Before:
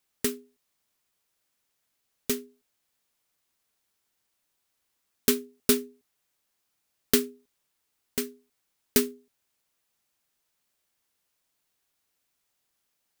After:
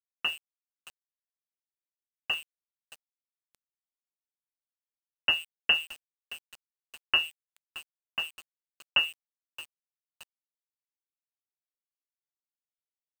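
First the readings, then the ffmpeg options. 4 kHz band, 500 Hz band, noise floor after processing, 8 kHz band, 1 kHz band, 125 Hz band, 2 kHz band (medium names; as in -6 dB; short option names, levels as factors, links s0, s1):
+7.5 dB, -19.5 dB, under -85 dBFS, -20.0 dB, +3.5 dB, under -10 dB, +10.0 dB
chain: -filter_complex "[0:a]highpass=45,bandreject=f=147.4:t=h:w=4,bandreject=f=294.8:t=h:w=4,lowpass=f=2600:t=q:w=0.5098,lowpass=f=2600:t=q:w=0.6013,lowpass=f=2600:t=q:w=0.9,lowpass=f=2600:t=q:w=2.563,afreqshift=-3100,asplit=2[s0][s1];[s1]aecho=0:1:622|1244|1866|2488:0.126|0.0629|0.0315|0.0157[s2];[s0][s2]amix=inputs=2:normalize=0,aeval=exprs='val(0)*gte(abs(val(0)),0.00891)':c=same"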